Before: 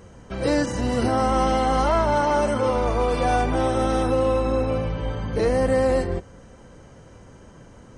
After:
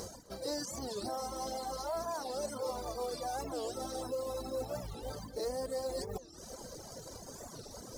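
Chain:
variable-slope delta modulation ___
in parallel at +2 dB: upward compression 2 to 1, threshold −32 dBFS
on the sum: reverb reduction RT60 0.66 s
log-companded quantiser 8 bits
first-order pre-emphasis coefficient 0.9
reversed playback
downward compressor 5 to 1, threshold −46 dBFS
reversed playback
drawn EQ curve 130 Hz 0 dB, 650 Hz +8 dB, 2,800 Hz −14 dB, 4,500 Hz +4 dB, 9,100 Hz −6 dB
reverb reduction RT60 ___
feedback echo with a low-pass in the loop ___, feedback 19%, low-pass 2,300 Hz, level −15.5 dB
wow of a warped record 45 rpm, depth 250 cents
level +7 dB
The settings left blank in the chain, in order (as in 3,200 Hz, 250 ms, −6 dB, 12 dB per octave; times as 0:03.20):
64 kbit/s, 1 s, 255 ms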